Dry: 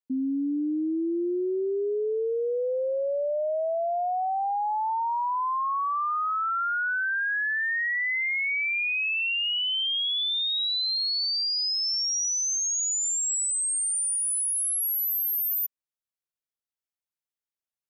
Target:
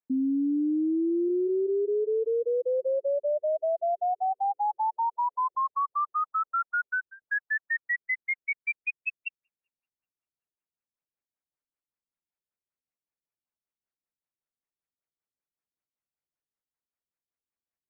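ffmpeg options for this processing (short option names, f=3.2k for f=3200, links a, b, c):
-filter_complex "[0:a]asplit=3[a][b][c];[a]afade=t=out:st=5.55:d=0.02[d];[b]asuperstop=centerf=1800:order=20:qfactor=3,afade=t=in:st=5.55:d=0.02,afade=t=out:st=7.22:d=0.02[e];[c]afade=t=in:st=7.22:d=0.02[f];[d][e][f]amix=inputs=3:normalize=0,afftfilt=real='re*lt(b*sr/1024,380*pow(2800/380,0.5+0.5*sin(2*PI*5.2*pts/sr)))':imag='im*lt(b*sr/1024,380*pow(2800/380,0.5+0.5*sin(2*PI*5.2*pts/sr)))':win_size=1024:overlap=0.75,volume=1.5dB"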